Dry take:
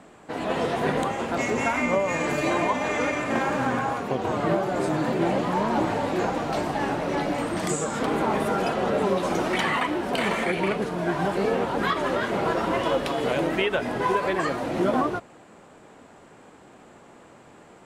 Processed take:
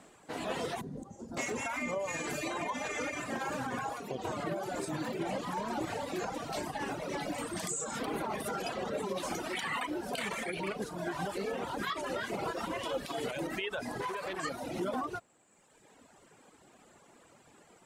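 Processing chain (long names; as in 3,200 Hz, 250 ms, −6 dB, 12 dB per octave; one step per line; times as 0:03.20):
high-shelf EQ 3,900 Hz +11.5 dB
brickwall limiter −16 dBFS, peak gain reduction 8.5 dB
0:00.81–0:01.37: drawn EQ curve 220 Hz 0 dB, 2,600 Hz −24 dB, 5,800 Hz −9 dB, 9,500 Hz −14 dB
reverb reduction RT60 1.5 s
0:14.01–0:14.43: saturating transformer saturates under 1,100 Hz
level −8 dB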